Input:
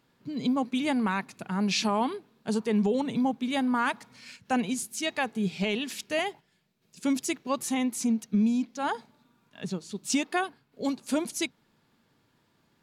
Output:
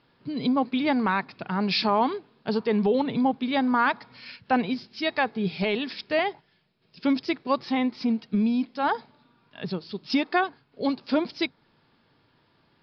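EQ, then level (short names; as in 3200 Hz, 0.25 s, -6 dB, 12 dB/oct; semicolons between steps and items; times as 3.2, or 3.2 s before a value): dynamic EQ 2900 Hz, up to -7 dB, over -51 dBFS, Q 4.2; Chebyshev low-pass 5200 Hz, order 8; bell 210 Hz -4.5 dB 0.51 oct; +5.5 dB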